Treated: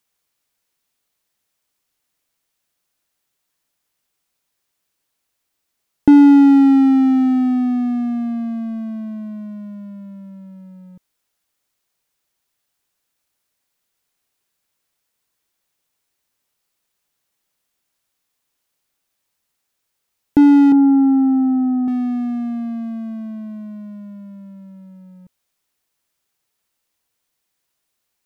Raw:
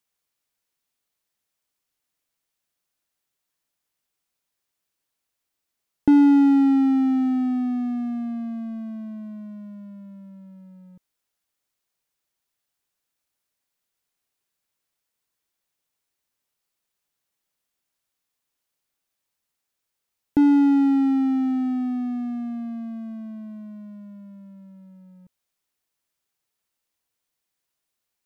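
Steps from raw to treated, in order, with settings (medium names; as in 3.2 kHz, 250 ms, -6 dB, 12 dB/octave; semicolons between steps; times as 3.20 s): 20.72–21.88 s: low-pass 1.2 kHz 24 dB/octave; trim +6.5 dB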